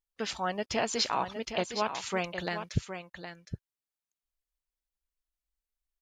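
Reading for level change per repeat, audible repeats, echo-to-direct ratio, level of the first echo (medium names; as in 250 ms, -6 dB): no regular repeats, 1, -9.0 dB, -9.0 dB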